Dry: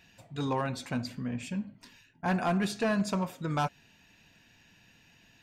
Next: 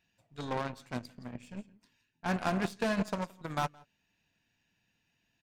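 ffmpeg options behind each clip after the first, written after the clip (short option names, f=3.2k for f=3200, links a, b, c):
-af "aecho=1:1:169:0.2,aeval=exprs='0.0944*(cos(1*acos(clip(val(0)/0.0944,-1,1)))-cos(1*PI/2))+0.0266*(cos(3*acos(clip(val(0)/0.0944,-1,1)))-cos(3*PI/2))+0.00237*(cos(6*acos(clip(val(0)/0.0944,-1,1)))-cos(6*PI/2))':c=same"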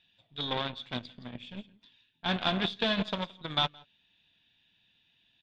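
-af "lowpass=f=3.5k:t=q:w=13"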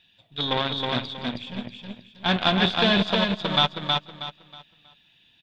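-af "aecho=1:1:319|638|957|1276:0.668|0.194|0.0562|0.0163,volume=7.5dB"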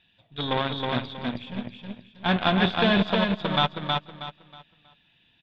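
-af "bass=f=250:g=1,treble=f=4k:g=-14"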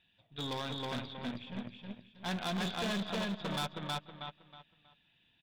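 -af "volume=24.5dB,asoftclip=hard,volume=-24.5dB,volume=-7.5dB"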